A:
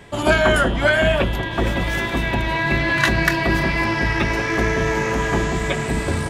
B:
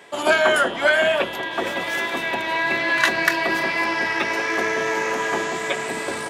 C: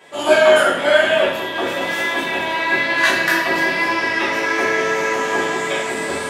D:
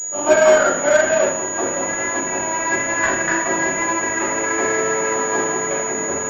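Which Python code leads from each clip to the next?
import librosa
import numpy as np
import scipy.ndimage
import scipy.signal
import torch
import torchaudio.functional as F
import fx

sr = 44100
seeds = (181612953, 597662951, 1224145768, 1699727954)

y1 = scipy.signal.sosfilt(scipy.signal.butter(2, 410.0, 'highpass', fs=sr, output='sos'), x)
y2 = fx.rev_plate(y1, sr, seeds[0], rt60_s=0.69, hf_ratio=0.9, predelay_ms=0, drr_db=-7.5)
y2 = F.gain(torch.from_numpy(y2), -5.0).numpy()
y3 = scipy.signal.medfilt(y2, 15)
y3 = fx.pwm(y3, sr, carrier_hz=6800.0)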